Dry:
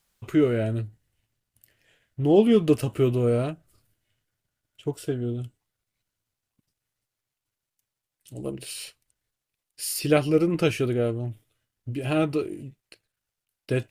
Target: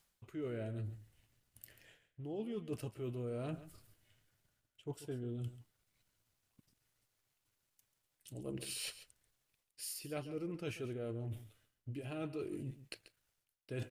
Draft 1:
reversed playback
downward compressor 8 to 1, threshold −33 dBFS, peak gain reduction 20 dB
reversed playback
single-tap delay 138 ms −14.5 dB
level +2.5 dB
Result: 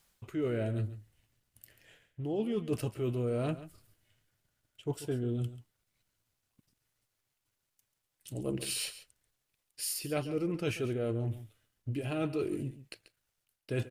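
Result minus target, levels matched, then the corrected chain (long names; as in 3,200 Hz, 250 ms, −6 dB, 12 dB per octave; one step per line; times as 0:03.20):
downward compressor: peak gain reduction −9 dB
reversed playback
downward compressor 8 to 1, threshold −43 dBFS, peak gain reduction 28.5 dB
reversed playback
single-tap delay 138 ms −14.5 dB
level +2.5 dB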